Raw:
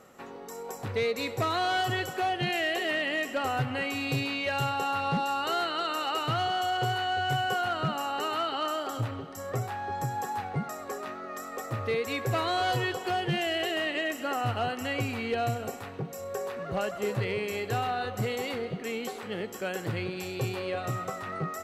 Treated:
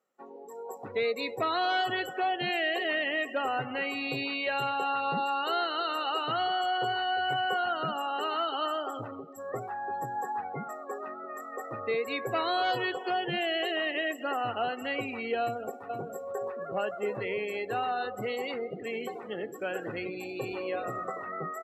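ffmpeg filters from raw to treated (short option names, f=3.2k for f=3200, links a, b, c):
-filter_complex "[0:a]asplit=2[a][b];[b]afade=t=in:st=15.42:d=0.01,afade=t=out:st=15.85:d=0.01,aecho=0:1:470|940|1410|1880:0.562341|0.168702|0.0506107|0.0151832[c];[a][c]amix=inputs=2:normalize=0,asplit=3[d][e][f];[d]afade=t=out:st=18.7:d=0.02[g];[e]asplit=6[h][i][j][k][l][m];[i]adelay=82,afreqshift=-56,volume=-9.5dB[n];[j]adelay=164,afreqshift=-112,volume=-16.6dB[o];[k]adelay=246,afreqshift=-168,volume=-23.8dB[p];[l]adelay=328,afreqshift=-224,volume=-30.9dB[q];[m]adelay=410,afreqshift=-280,volume=-38dB[r];[h][n][o][p][q][r]amix=inputs=6:normalize=0,afade=t=in:st=18.7:d=0.02,afade=t=out:st=21.25:d=0.02[s];[f]afade=t=in:st=21.25:d=0.02[t];[g][s][t]amix=inputs=3:normalize=0,afftdn=nr=26:nf=-38,highpass=270"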